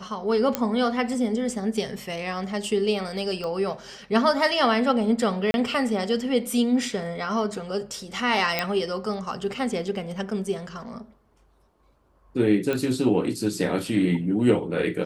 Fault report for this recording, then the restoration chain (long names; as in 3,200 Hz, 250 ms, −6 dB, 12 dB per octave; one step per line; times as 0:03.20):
0:00.55: click −7 dBFS
0:03.44: click −20 dBFS
0:05.51–0:05.54: drop-out 31 ms
0:08.59: click −8 dBFS
0:12.73: click −14 dBFS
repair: click removal
repair the gap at 0:05.51, 31 ms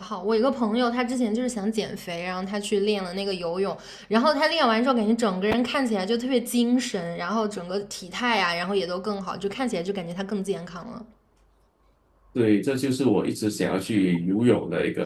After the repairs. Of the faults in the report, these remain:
none of them is left